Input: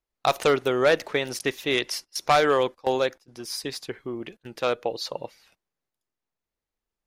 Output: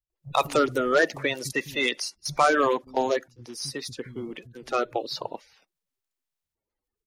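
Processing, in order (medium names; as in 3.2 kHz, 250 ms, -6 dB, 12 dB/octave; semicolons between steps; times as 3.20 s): coarse spectral quantiser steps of 30 dB; bands offset in time lows, highs 100 ms, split 180 Hz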